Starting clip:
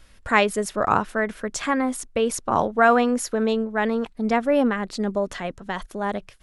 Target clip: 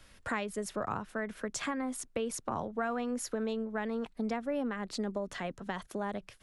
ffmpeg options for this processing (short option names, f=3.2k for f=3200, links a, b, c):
-filter_complex "[0:a]acrossover=split=84|200[a][b][c];[a]acompressor=threshold=-57dB:ratio=4[d];[b]acompressor=threshold=-42dB:ratio=4[e];[c]acompressor=threshold=-32dB:ratio=4[f];[d][e][f]amix=inputs=3:normalize=0,volume=-2.5dB"